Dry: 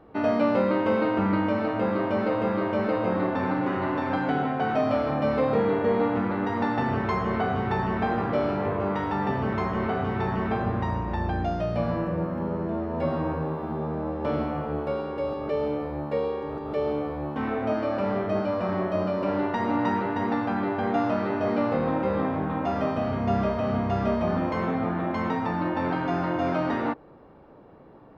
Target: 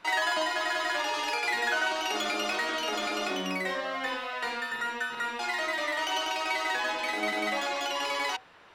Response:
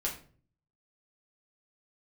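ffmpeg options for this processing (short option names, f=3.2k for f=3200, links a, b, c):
-af "bandreject=f=78.43:t=h:w=4,bandreject=f=156.86:t=h:w=4,bandreject=f=235.29:t=h:w=4,asetrate=142002,aresample=44100,volume=-4.5dB"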